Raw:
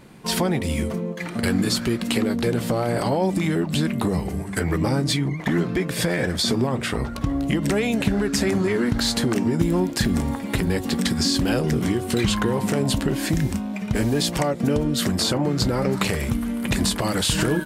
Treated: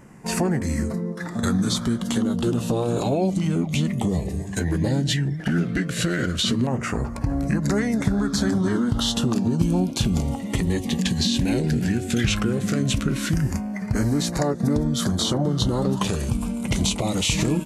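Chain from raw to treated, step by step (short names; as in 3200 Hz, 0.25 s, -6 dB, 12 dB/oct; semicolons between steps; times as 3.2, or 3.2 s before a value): LFO notch saw down 0.15 Hz 770–4400 Hz; formant shift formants -3 st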